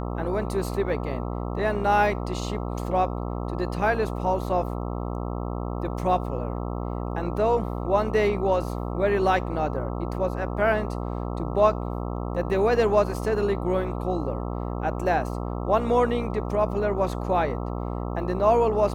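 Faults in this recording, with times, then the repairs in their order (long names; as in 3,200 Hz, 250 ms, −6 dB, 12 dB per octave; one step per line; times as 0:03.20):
mains buzz 60 Hz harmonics 22 −30 dBFS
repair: hum removal 60 Hz, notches 22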